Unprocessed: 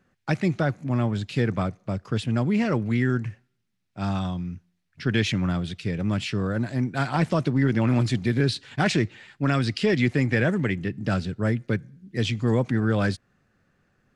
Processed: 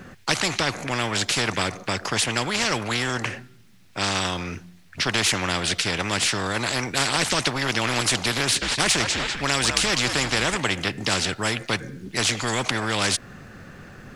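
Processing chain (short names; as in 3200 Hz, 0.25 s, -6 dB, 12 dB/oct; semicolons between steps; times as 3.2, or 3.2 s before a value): 8.42–10.57 frequency-shifting echo 0.197 s, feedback 34%, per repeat -80 Hz, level -15 dB; spectral compressor 4:1; gain +8 dB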